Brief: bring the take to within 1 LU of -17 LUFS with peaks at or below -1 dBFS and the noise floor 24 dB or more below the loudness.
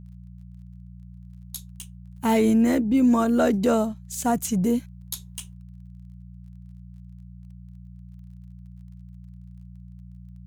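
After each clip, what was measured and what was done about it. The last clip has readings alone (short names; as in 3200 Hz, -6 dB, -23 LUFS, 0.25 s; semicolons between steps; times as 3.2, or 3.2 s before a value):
ticks 21/s; hum 60 Hz; harmonics up to 180 Hz; hum level -40 dBFS; loudness -22.5 LUFS; peak -11.0 dBFS; loudness target -17.0 LUFS
-> de-click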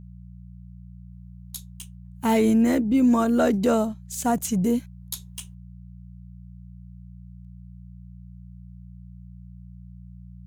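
ticks 0.38/s; hum 60 Hz; harmonics up to 180 Hz; hum level -40 dBFS
-> de-hum 60 Hz, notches 3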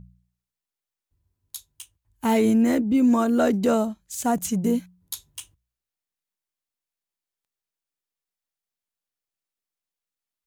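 hum none; loudness -22.0 LUFS; peak -10.5 dBFS; loudness target -17.0 LUFS
-> gain +5 dB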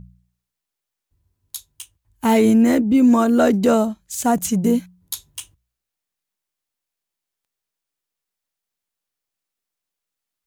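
loudness -17.0 LUFS; peak -5.5 dBFS; noise floor -84 dBFS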